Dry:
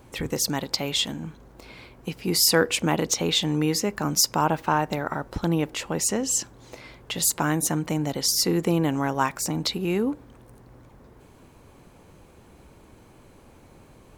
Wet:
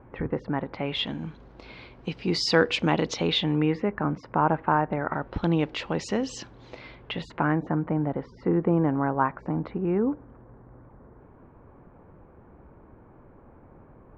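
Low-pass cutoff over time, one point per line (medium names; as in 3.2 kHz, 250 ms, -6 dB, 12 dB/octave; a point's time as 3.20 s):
low-pass 24 dB/octave
0.66 s 1.8 kHz
1.21 s 4.5 kHz
3.21 s 4.5 kHz
3.94 s 1.9 kHz
4.92 s 1.9 kHz
5.52 s 4.3 kHz
6.85 s 4.3 kHz
7.69 s 1.6 kHz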